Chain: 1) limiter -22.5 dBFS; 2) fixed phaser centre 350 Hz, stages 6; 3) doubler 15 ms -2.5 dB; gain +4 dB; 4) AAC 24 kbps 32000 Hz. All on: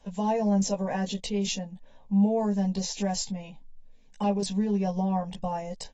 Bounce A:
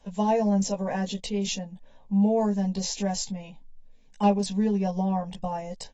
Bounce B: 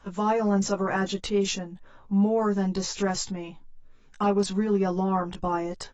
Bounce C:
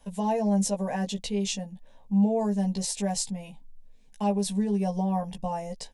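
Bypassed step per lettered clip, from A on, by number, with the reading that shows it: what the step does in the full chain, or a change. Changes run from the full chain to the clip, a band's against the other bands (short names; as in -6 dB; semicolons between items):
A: 1, crest factor change +3.5 dB; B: 2, 2 kHz band +7.0 dB; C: 4, 8 kHz band +2.5 dB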